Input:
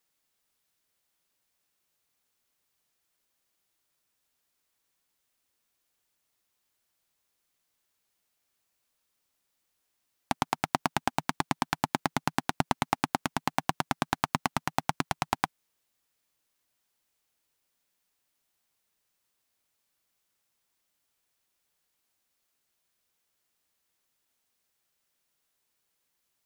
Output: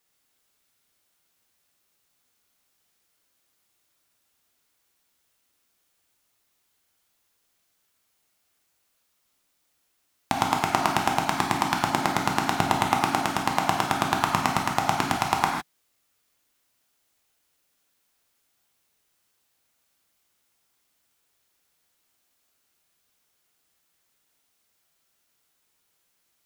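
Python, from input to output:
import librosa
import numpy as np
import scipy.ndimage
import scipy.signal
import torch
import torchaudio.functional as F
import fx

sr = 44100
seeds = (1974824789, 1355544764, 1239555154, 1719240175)

y = fx.rev_gated(x, sr, seeds[0], gate_ms=180, shape='flat', drr_db=-0.5)
y = y * librosa.db_to_amplitude(3.5)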